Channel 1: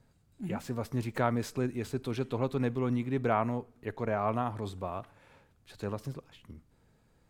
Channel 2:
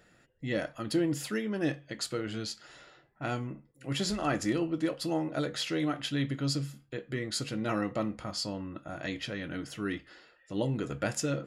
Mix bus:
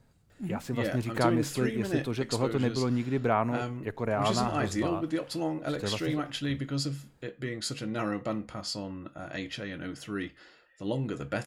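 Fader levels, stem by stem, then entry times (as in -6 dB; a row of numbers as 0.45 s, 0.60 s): +2.0 dB, -0.5 dB; 0.00 s, 0.30 s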